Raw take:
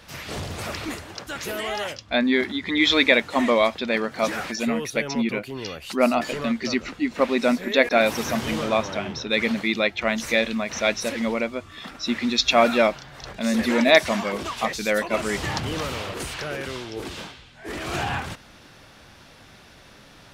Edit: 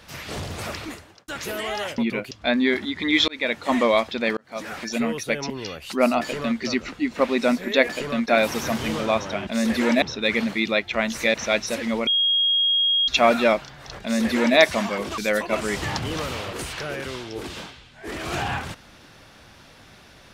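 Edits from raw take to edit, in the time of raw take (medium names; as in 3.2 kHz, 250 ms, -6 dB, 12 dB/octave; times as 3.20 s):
0.68–1.28 s: fade out
2.95–3.36 s: fade in
4.04–4.63 s: fade in
5.17–5.50 s: move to 1.98 s
6.21–6.58 s: copy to 7.89 s
10.42–10.68 s: delete
11.41–12.42 s: bleep 3.27 kHz -17 dBFS
13.36–13.91 s: copy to 9.10 s
14.52–14.79 s: delete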